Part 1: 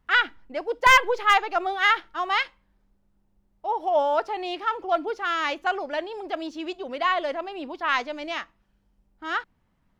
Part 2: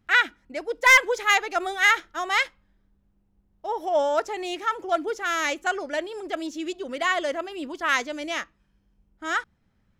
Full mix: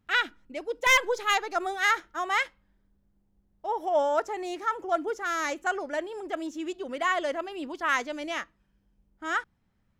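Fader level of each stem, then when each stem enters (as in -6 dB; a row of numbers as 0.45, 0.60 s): -11.0, -5.0 dB; 0.00, 0.00 s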